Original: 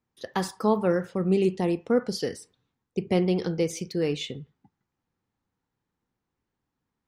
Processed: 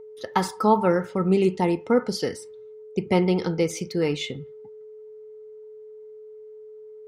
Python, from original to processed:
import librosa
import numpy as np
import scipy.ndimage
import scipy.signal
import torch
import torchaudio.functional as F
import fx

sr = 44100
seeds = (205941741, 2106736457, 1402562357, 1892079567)

y = x + 10.0 ** (-43.0 / 20.0) * np.sin(2.0 * np.pi * 430.0 * np.arange(len(x)) / sr)
y = fx.small_body(y, sr, hz=(910.0, 1300.0, 2100.0), ring_ms=65, db=13)
y = y * 10.0 ** (2.5 / 20.0)